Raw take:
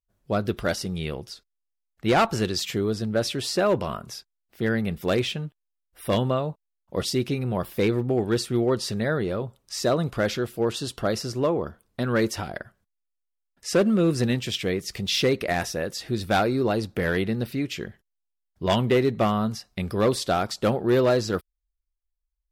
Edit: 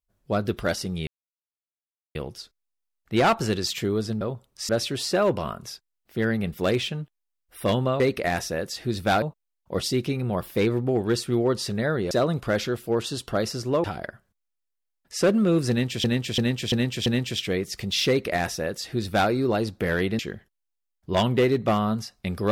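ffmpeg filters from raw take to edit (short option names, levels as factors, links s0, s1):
-filter_complex "[0:a]asplit=13[s0][s1][s2][s3][s4][s5][s6][s7][s8][s9][s10][s11][s12];[s0]atrim=end=1.07,asetpts=PTS-STARTPTS,afade=t=out:st=1.066:d=0.004:c=hsin,apad=pad_dur=1.08[s13];[s1]atrim=start=1.07:end=3.132,asetpts=PTS-STARTPTS,afade=t=in:d=0.004:c=hsin[s14];[s2]atrim=start=9.328:end=9.812[s15];[s3]atrim=start=3.128:end=6.442[s16];[s4]atrim=start=15.238:end=16.462[s17];[s5]atrim=start=6.438:end=9.332[s18];[s6]atrim=start=9.808:end=11.542[s19];[s7]atrim=start=12.358:end=14.562[s20];[s8]atrim=start=14.218:end=14.562[s21];[s9]atrim=start=14.218:end=14.562[s22];[s10]atrim=start=14.218:end=14.562[s23];[s11]atrim=start=14.218:end=17.352[s24];[s12]atrim=start=17.718[s25];[s13][s14]concat=n=2:v=0:a=1[s26];[s26][s15]acrossfade=d=0.004:c1=hsin:c2=hsin[s27];[s27][s16]acrossfade=d=0.004:c1=hsin:c2=hsin[s28];[s28][s17]acrossfade=d=0.004:c1=hsin:c2=hsin[s29];[s29][s18]acrossfade=d=0.004:c1=hsin:c2=hsin[s30];[s30][s19]acrossfade=d=0.004:c1=hsin:c2=hsin[s31];[s31][s20]acrossfade=d=0.004:c1=hsin:c2=hsin[s32];[s32][s21]acrossfade=d=0.004:c1=hsin:c2=hsin[s33];[s33][s22]acrossfade=d=0.004:c1=hsin:c2=hsin[s34];[s34][s23]acrossfade=d=0.004:c1=hsin:c2=hsin[s35];[s35][s24]acrossfade=d=0.004:c1=hsin:c2=hsin[s36];[s36][s25]acrossfade=d=0.004:c1=hsin:c2=hsin"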